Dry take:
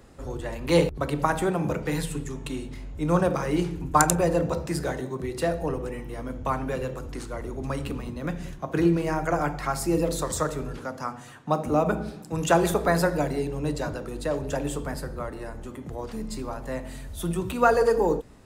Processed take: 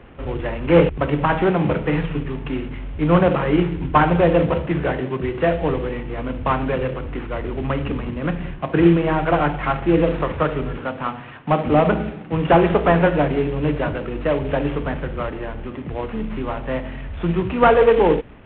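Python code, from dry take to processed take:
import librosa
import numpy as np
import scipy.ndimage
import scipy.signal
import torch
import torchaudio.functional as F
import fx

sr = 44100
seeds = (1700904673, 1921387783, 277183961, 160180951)

y = fx.cvsd(x, sr, bps=16000)
y = F.gain(torch.from_numpy(y), 8.0).numpy()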